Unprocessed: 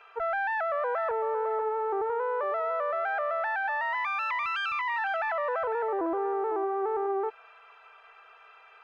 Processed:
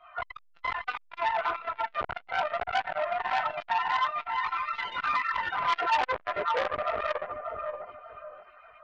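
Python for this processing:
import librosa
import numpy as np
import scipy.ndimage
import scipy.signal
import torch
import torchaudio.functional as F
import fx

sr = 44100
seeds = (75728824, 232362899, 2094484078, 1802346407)

y = fx.spec_dropout(x, sr, seeds[0], share_pct=27)
y = fx.rider(y, sr, range_db=10, speed_s=2.0)
y = fx.dynamic_eq(y, sr, hz=1000.0, q=2.8, threshold_db=-49.0, ratio=4.0, max_db=5)
y = scipy.signal.sosfilt(scipy.signal.butter(2, 1800.0, 'lowpass', fs=sr, output='sos'), y)
y = fx.pitch_keep_formants(y, sr, semitones=7.5)
y = fx.chorus_voices(y, sr, voices=4, hz=0.63, base_ms=21, depth_ms=3.0, mix_pct=55)
y = fx.echo_feedback(y, sr, ms=583, feedback_pct=26, wet_db=-7.5)
y = fx.transformer_sat(y, sr, knee_hz=2200.0)
y = y * 10.0 ** (6.5 / 20.0)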